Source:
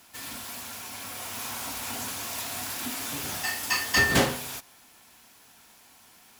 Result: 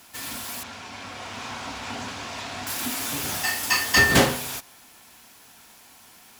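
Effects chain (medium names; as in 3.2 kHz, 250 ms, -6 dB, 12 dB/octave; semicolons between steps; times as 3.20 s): 0.63–2.67 s: distance through air 130 m; trim +4.5 dB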